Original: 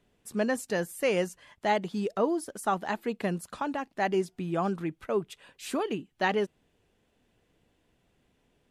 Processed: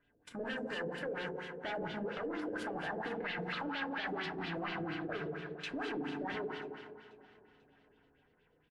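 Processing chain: in parallel at -5 dB: companded quantiser 2-bit; on the sum: saturation -27.5 dBFS, distortion -11 dB; level held to a coarse grid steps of 19 dB; 3.19–4.69 s: FFT filter 520 Hz 0 dB, 4.3 kHz +13 dB, 7 kHz -1 dB; FDN reverb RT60 1.9 s, low-frequency decay 1.05×, high-frequency decay 1×, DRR -2.5 dB; LFO low-pass sine 4.3 Hz 450–3500 Hz; peak limiter -27.5 dBFS, peak gain reduction 10.5 dB; peaking EQ 1.6 kHz +11 dB 0.29 oct; feedback delay 491 ms, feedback 52%, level -20 dB; trim -4 dB

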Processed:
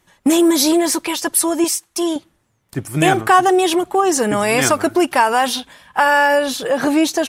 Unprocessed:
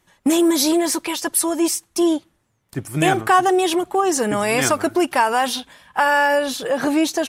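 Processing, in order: 1.64–2.16 s: bass shelf 410 Hz -9.5 dB; trim +3 dB

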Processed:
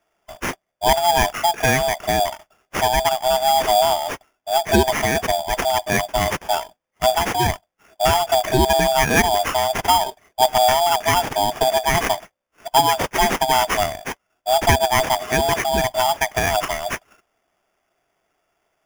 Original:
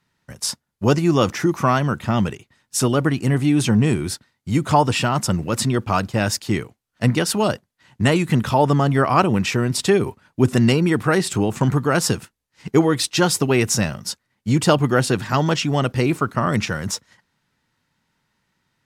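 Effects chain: split-band scrambler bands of 500 Hz; sample-rate reducer 4.1 kHz, jitter 0%

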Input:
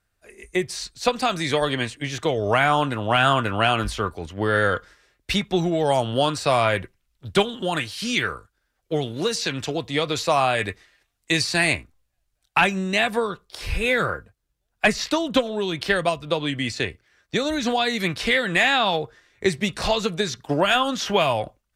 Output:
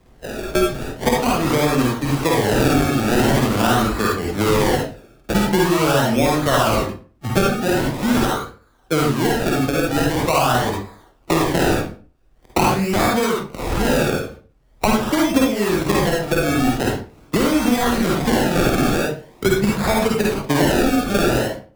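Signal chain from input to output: peaking EQ 240 Hz +6.5 dB 1.1 oct; decimation with a swept rate 30×, swing 100% 0.44 Hz; reverberation RT60 0.35 s, pre-delay 45 ms, DRR -3.5 dB; three bands compressed up and down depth 70%; trim -2 dB

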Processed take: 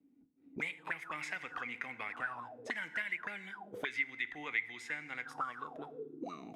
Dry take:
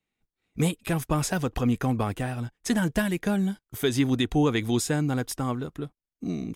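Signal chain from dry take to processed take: FDN reverb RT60 1.2 s, low-frequency decay 1.55×, high-frequency decay 0.75×, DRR 12 dB; auto-wah 270–2100 Hz, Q 17, up, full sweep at -22.5 dBFS; three bands compressed up and down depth 70%; trim +11 dB

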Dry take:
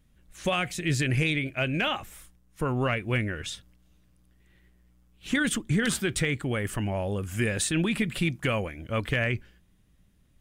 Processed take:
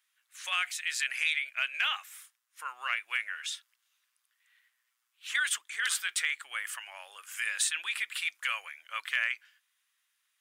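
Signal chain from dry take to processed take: high-pass 1.2 kHz 24 dB/octave

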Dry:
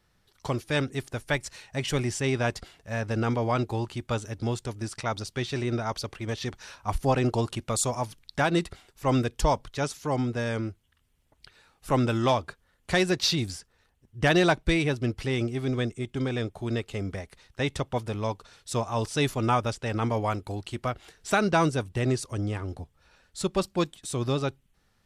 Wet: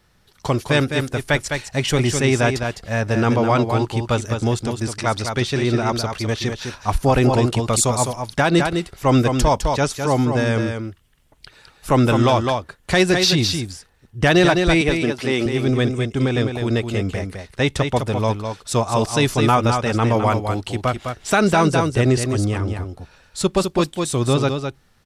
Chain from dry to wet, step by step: 14.81–15.46 s: high-pass 220 Hz 12 dB/octave; delay 207 ms -6.5 dB; loudness maximiser +14 dB; trim -5 dB

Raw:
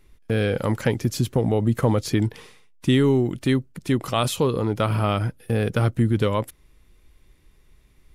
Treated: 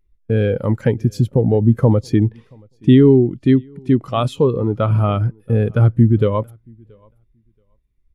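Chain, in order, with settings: 2.22–4.88 s: treble shelf 9.5 kHz -8.5 dB; feedback delay 678 ms, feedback 28%, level -20.5 dB; spectral contrast expander 1.5:1; trim +7 dB

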